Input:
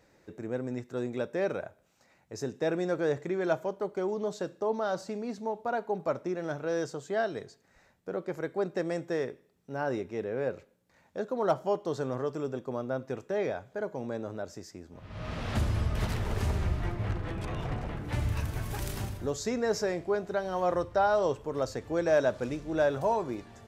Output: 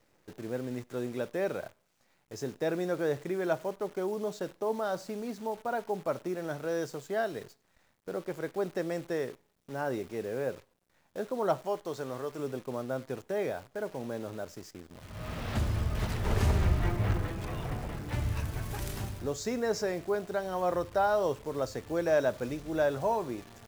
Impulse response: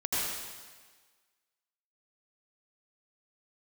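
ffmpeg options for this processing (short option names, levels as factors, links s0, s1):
-filter_complex "[0:a]asettb=1/sr,asplit=3[s0][s1][s2];[s0]atrim=end=11.624[s3];[s1]atrim=start=11.62:end=12.39,asetpts=PTS-STARTPTS,afade=t=in:d=0.004:c=qsin,afade=t=out:st=0.766:d=0.004:c=qsin,lowshelf=f=400:g=-6.5[s4];[s2]atrim=start=12.386[s5];[s3][s4]acrossfade=d=0.004:c1=hsin:c2=qsin[s6];[s6][s5]acrossfade=d=0.004:c1=qsin:c2=hsin,asettb=1/sr,asplit=3[s7][s8][s9];[s7]atrim=end=16.244[s10];[s8]atrim=start=16.24:end=17.27,asetpts=PTS-STARTPTS,afade=t=in:d=0.004:c=qsin,afade=t=out:st=1.026:d=0.004:c=qsin,acontrast=24[s11];[s9]atrim=start=17.266[s12];[s10][s11]acrossfade=d=0.004:c1=hsin:c2=qsin[s13];[s13][s12]acrossfade=d=0.004:c1=qsin:c2=hsin,acrusher=bits=9:dc=4:mix=0:aa=0.000001,volume=0.841"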